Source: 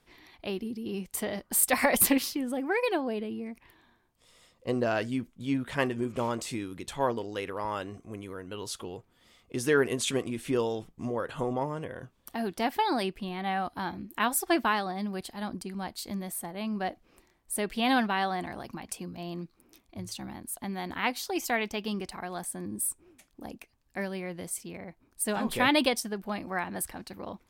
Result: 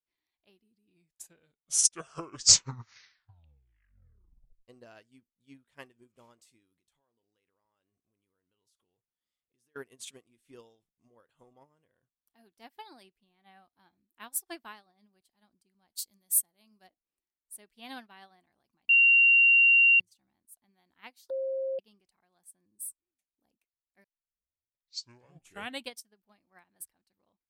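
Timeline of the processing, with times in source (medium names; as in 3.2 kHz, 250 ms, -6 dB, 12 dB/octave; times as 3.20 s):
0.50 s: tape stop 4.18 s
6.76–9.76 s: compression 5:1, threshold -41 dBFS
15.90–16.87 s: tone controls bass 0 dB, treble +12 dB
18.89–20.00 s: bleep 2.76 kHz -15 dBFS
21.30–21.79 s: bleep 533 Hz -15.5 dBFS
24.04 s: tape start 1.91 s
whole clip: treble shelf 2.7 kHz +9.5 dB; upward expansion 2.5:1, over -34 dBFS; trim -3 dB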